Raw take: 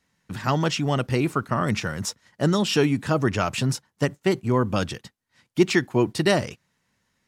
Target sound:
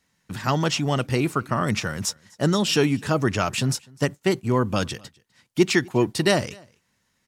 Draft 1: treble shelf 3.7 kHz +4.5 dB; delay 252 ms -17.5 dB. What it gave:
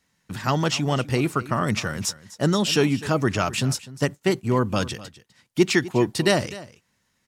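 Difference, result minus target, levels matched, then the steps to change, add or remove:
echo-to-direct +9 dB
change: delay 252 ms -26.5 dB

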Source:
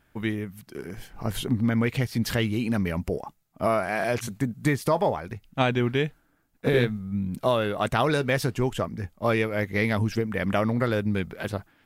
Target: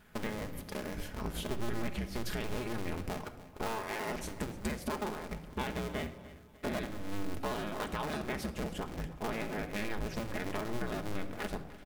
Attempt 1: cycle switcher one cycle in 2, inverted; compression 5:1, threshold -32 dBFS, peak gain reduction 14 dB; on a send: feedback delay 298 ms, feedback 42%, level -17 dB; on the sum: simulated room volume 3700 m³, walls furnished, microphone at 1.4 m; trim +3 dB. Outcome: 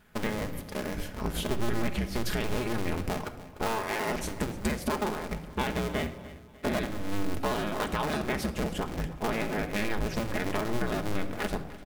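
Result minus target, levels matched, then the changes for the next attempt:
compression: peak gain reduction -6.5 dB
change: compression 5:1, threshold -40 dBFS, peak gain reduction 20 dB

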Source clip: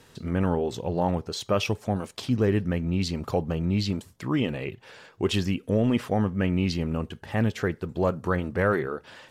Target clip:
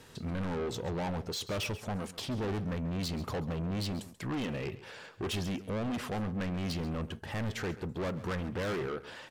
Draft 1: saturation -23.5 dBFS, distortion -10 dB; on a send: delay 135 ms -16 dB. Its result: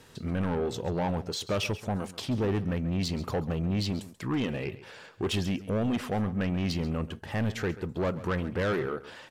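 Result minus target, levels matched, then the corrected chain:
saturation: distortion -5 dB
saturation -31.5 dBFS, distortion -5 dB; on a send: delay 135 ms -16 dB

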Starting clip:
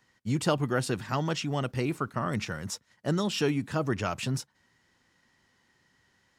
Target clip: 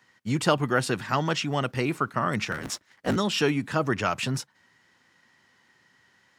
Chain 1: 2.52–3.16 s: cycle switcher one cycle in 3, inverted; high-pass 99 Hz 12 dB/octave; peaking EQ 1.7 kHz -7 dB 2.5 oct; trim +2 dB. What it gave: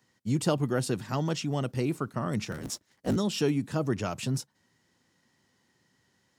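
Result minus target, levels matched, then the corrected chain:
2 kHz band -8.0 dB
2.52–3.16 s: cycle switcher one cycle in 3, inverted; high-pass 99 Hz 12 dB/octave; peaking EQ 1.7 kHz +5 dB 2.5 oct; trim +2 dB

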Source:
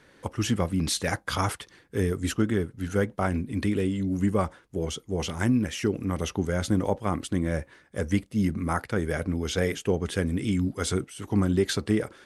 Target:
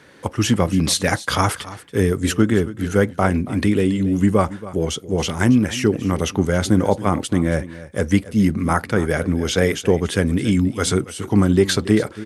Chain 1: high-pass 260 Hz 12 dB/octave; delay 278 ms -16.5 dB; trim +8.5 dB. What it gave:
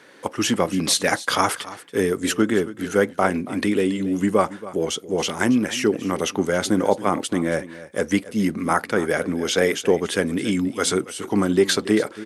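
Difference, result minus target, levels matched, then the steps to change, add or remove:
125 Hz band -8.0 dB
change: high-pass 73 Hz 12 dB/octave

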